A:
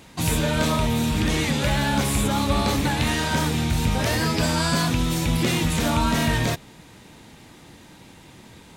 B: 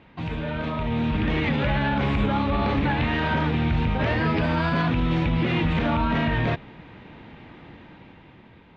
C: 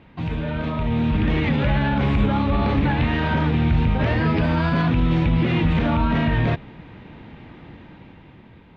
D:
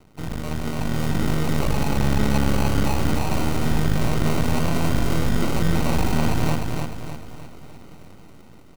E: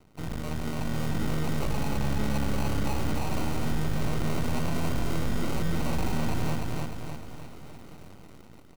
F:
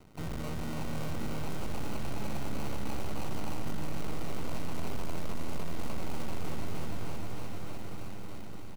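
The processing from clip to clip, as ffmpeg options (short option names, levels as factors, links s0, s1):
-af "lowpass=f=2900:w=0.5412,lowpass=f=2900:w=1.3066,alimiter=limit=0.133:level=0:latency=1:release=57,dynaudnorm=f=210:g=9:m=2.24,volume=0.631"
-af "lowshelf=f=290:g=5.5"
-af "acrusher=samples=26:mix=1:aa=0.000001,aeval=exprs='max(val(0),0)':c=same,aecho=1:1:303|606|909|1212|1515|1818:0.631|0.278|0.122|0.0537|0.0236|0.0104"
-filter_complex "[0:a]aeval=exprs='(tanh(3.16*val(0)+0.55)-tanh(0.55))/3.16':c=same,asplit=2[s0][s1];[s1]acrusher=bits=6:mix=0:aa=0.000001,volume=0.299[s2];[s0][s2]amix=inputs=2:normalize=0,volume=0.708"
-af "asoftclip=type=tanh:threshold=0.0266,aecho=1:1:616|1232|1848|2464|3080|3696|4312:0.447|0.246|0.135|0.0743|0.0409|0.0225|0.0124,volume=1.33"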